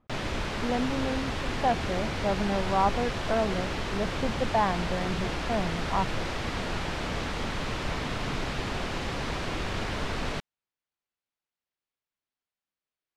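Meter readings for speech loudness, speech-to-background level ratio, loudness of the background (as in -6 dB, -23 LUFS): -31.0 LUFS, 1.5 dB, -32.5 LUFS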